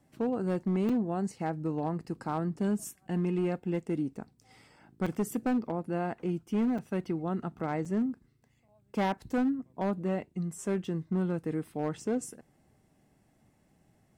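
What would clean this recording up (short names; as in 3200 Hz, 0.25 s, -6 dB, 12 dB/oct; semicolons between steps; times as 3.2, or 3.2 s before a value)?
clip repair -23.5 dBFS; interpolate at 0.89/5.06/6.78/7.85/8.68, 4.9 ms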